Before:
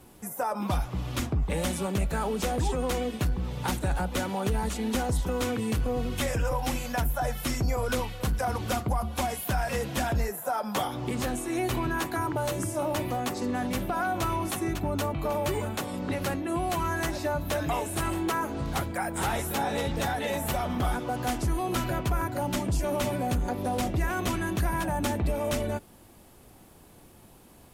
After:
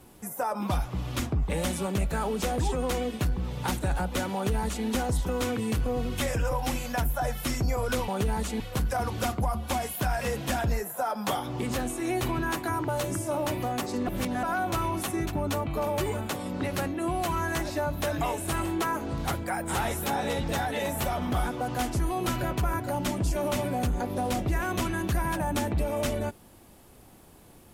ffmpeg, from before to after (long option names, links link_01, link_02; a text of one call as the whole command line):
ffmpeg -i in.wav -filter_complex "[0:a]asplit=5[link_01][link_02][link_03][link_04][link_05];[link_01]atrim=end=8.082[link_06];[link_02]atrim=start=4.338:end=4.862[link_07];[link_03]atrim=start=8.078:end=13.552[link_08];[link_04]atrim=start=13.548:end=13.912,asetpts=PTS-STARTPTS,areverse[link_09];[link_05]atrim=start=13.908[link_10];[link_06][link_07]acrossfade=duration=0.004:curve1=hsin:curve2=hsin[link_11];[link_11][link_08]acrossfade=duration=0.004:curve1=hsin:curve2=hsin[link_12];[link_12][link_09]acrossfade=duration=0.004:curve1=hsin:curve2=hsin[link_13];[link_13][link_10]acrossfade=duration=0.004:curve1=hsin:curve2=hsin" out.wav